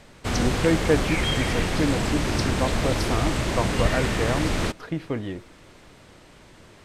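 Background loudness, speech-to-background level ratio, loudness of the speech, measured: -25.5 LUFS, -2.5 dB, -28.0 LUFS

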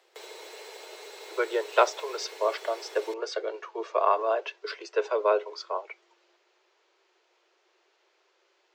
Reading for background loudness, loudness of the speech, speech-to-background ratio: -44.0 LUFS, -29.0 LUFS, 15.0 dB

